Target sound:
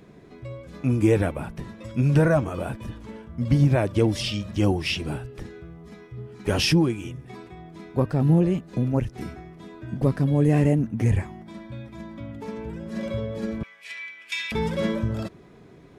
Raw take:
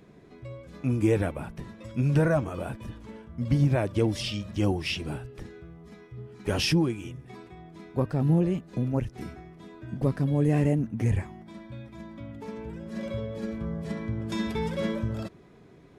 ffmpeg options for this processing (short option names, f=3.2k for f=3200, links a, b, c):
-filter_complex "[0:a]asettb=1/sr,asplit=3[a][b][c];[a]atrim=end=13.634[d];[b]atrim=start=13.63:end=14.52,asetpts=PTS-STARTPTS,afade=t=in:d=0.004:c=qsin,afade=t=out:st=0.886:d=0.004:c=qsin,highpass=f=2.4k:t=q:w=5.3[e];[c]atrim=start=14.516[f];[d][e]acrossfade=d=0.004:c1=hsin:c2=qsin[g];[g][f]acrossfade=d=0.004:c1=qsin:c2=hsin,volume=4dB"